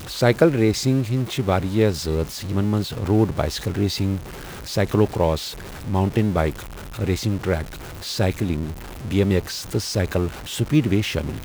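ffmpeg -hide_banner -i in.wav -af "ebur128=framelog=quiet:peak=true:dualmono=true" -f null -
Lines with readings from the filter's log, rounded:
Integrated loudness:
  I:         -19.3 LUFS
  Threshold: -29.6 LUFS
Loudness range:
  LRA:         3.5 LU
  Threshold: -40.2 LUFS
  LRA low:   -21.5 LUFS
  LRA high:  -18.0 LUFS
True peak:
  Peak:       -2.4 dBFS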